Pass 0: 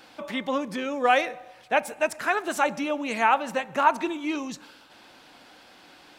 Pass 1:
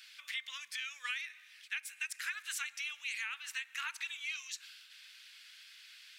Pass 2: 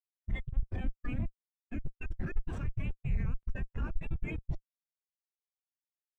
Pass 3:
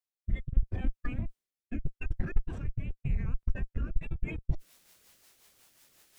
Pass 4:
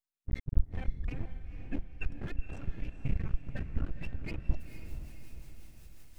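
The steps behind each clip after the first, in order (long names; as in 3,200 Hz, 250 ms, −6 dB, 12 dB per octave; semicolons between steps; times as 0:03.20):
inverse Chebyshev high-pass filter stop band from 730 Hz, stop band 50 dB; downward compressor 10 to 1, threshold −35 dBFS, peak gain reduction 12 dB
comparator with hysteresis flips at −36.5 dBFS; every bin expanded away from the loudest bin 2.5 to 1; level +18 dB
transient designer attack +7 dB, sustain +2 dB; reversed playback; upward compression, threshold −30 dBFS; reversed playback; rotating-speaker cabinet horn 0.8 Hz, later 5.5 Hz, at 0:03.60
spectral magnitudes quantised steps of 15 dB; half-wave rectification; feedback delay with all-pass diffusion 479 ms, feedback 50%, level −9 dB; level +1.5 dB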